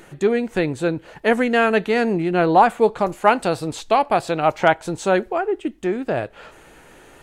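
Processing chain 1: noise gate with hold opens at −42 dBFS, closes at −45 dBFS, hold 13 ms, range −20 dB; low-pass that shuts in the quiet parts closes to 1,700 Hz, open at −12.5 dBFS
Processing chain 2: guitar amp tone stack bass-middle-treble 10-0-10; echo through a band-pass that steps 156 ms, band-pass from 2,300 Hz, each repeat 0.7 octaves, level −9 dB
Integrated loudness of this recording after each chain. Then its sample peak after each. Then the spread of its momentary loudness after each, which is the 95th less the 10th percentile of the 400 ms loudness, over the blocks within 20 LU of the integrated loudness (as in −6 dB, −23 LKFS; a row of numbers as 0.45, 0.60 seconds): −20.0, −30.5 LKFS; −2.0, −9.0 dBFS; 8, 13 LU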